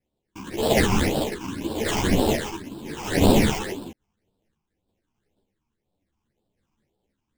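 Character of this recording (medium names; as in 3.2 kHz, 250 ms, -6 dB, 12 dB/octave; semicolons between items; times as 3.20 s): aliases and images of a low sample rate 1.3 kHz, jitter 20%; phasing stages 8, 1.9 Hz, lowest notch 520–2000 Hz; random-step tremolo; a shimmering, thickened sound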